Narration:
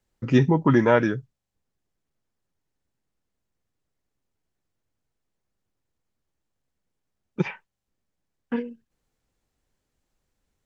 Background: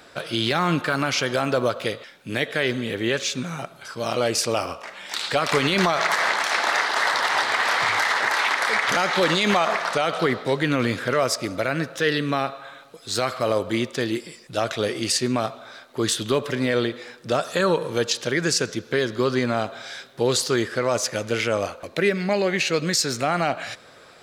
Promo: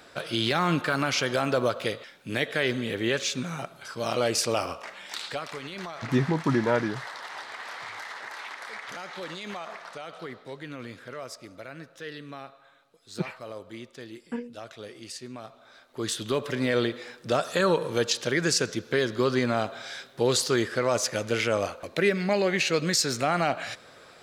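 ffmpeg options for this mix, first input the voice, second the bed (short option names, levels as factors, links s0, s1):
-filter_complex "[0:a]adelay=5800,volume=0.501[s0];[1:a]volume=3.98,afade=t=out:st=4.85:d=0.68:silence=0.188365,afade=t=in:st=15.43:d=1.38:silence=0.177828[s1];[s0][s1]amix=inputs=2:normalize=0"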